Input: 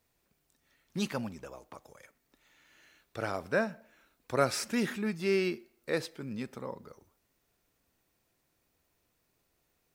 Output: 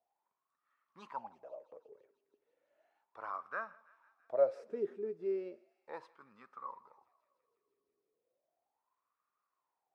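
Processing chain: wah 0.35 Hz 400–1200 Hz, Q 12; dynamic EQ 250 Hz, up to -4 dB, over -52 dBFS, Q 0.82; wow and flutter 21 cents; on a send: thinning echo 0.165 s, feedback 84%, high-pass 1100 Hz, level -21.5 dB; on the sum: gain +8 dB

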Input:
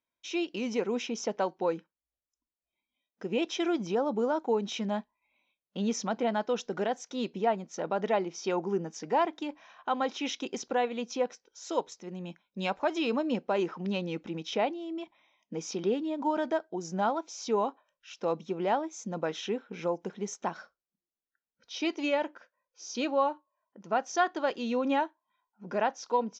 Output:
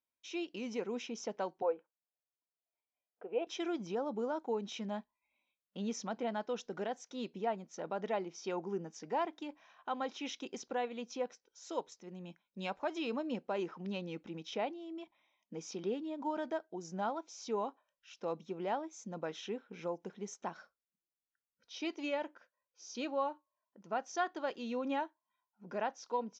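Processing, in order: 1.62–3.47 speaker cabinet 460–2400 Hz, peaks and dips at 470 Hz +8 dB, 700 Hz +9 dB, 1900 Hz -9 dB; gain -8 dB

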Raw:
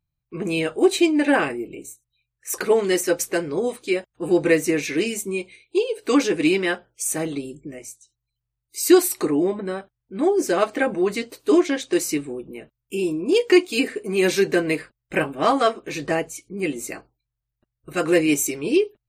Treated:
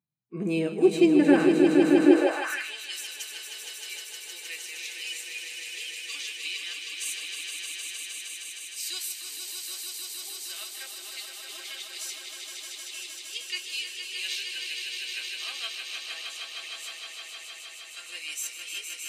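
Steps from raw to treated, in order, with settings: harmonic-percussive split percussive -10 dB; swelling echo 0.155 s, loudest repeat 5, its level -6 dB; high-pass sweep 200 Hz -> 3300 Hz, 2.01–2.73; gain -5 dB

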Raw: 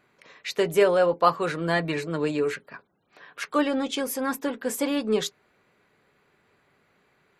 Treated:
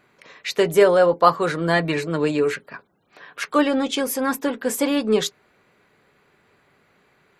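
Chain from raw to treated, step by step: 0.72–1.74 bell 2600 Hz -7 dB 0.26 oct; gain +5 dB

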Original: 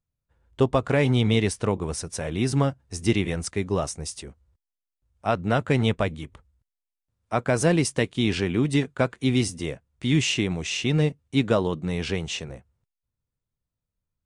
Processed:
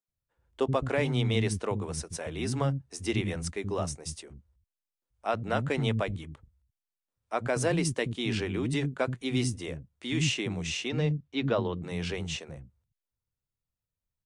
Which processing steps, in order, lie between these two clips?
10.88–11.82 LPF 6900 Hz -> 4100 Hz 24 dB/oct; bands offset in time highs, lows 80 ms, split 250 Hz; gain -5 dB

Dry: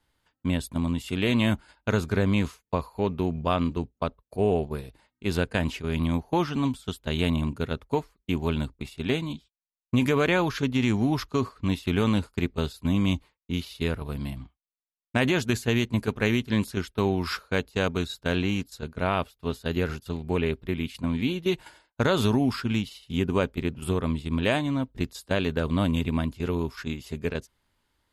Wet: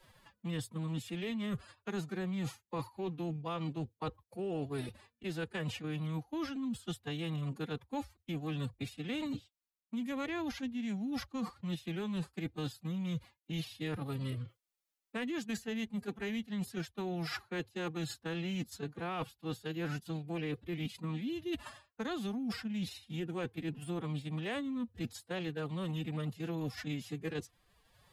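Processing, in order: reverse; compressor 8:1, threshold -34 dBFS, peak gain reduction 16.5 dB; reverse; formant-preserving pitch shift +11 st; three-band squash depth 40%

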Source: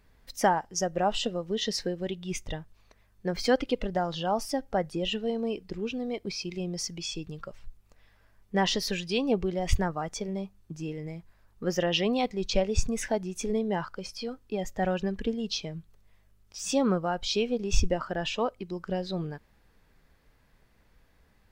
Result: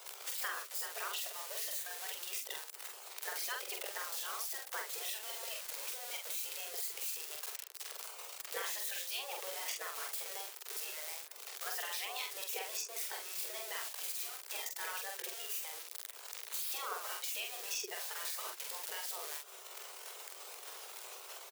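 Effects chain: switching spikes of -27 dBFS; spectral gate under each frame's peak -15 dB weak; steep high-pass 370 Hz 96 dB/oct; compressor 5:1, threshold -47 dBFS, peak gain reduction 17 dB; doubler 46 ms -3.5 dB; gain +8 dB

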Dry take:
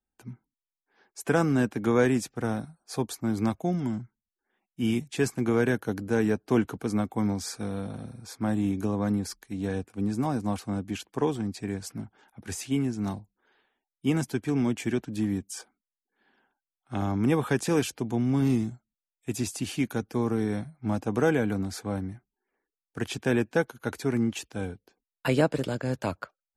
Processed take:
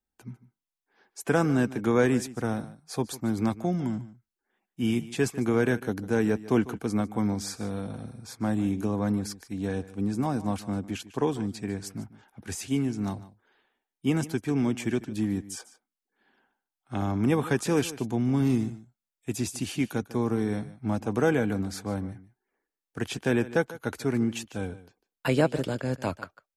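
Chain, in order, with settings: echo 0.149 s -17 dB

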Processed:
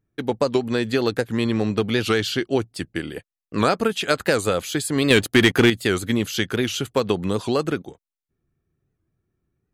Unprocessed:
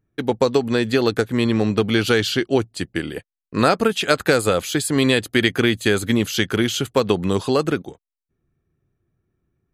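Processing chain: 5.11–5.7 sample leveller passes 2; record warp 78 rpm, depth 160 cents; gain -3 dB

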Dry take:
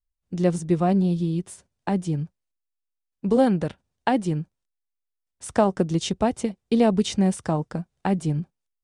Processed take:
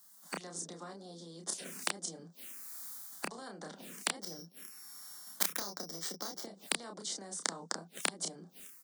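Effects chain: 4.22–6.43 sample sorter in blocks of 8 samples; AGC gain up to 16 dB; envelope phaser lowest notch 440 Hz, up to 2600 Hz, full sweep at -16.5 dBFS; high shelf 4400 Hz +8 dB; compressor 8:1, threshold -19 dBFS, peak gain reduction 12.5 dB; notch 920 Hz, Q 13; flipped gate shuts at -22 dBFS, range -37 dB; steep high-pass 170 Hz 96 dB/oct; doubler 30 ms -5 dB; spectral compressor 10:1; gain +10.5 dB

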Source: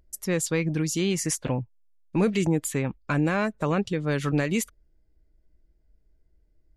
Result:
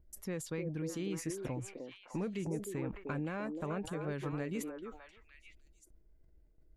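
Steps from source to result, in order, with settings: gate with hold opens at -55 dBFS; compressor 2:1, threshold -43 dBFS, peak gain reduction 13.5 dB; bell 6400 Hz -8 dB 2.3 oct; delay with a stepping band-pass 0.304 s, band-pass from 400 Hz, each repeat 1.4 oct, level -1 dB; sustainer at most 110 dB/s; gain -2 dB

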